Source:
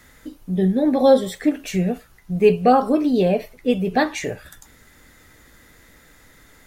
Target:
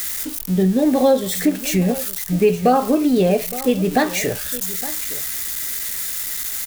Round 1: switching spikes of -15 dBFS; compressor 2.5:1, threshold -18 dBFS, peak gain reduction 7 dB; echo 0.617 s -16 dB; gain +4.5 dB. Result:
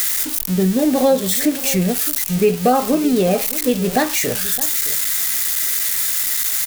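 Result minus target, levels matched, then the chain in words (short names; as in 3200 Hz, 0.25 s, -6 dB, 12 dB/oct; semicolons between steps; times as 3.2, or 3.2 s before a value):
echo 0.248 s early; switching spikes: distortion +7 dB
switching spikes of -22.5 dBFS; compressor 2.5:1, threshold -18 dBFS, peak gain reduction 7 dB; echo 0.865 s -16 dB; gain +4.5 dB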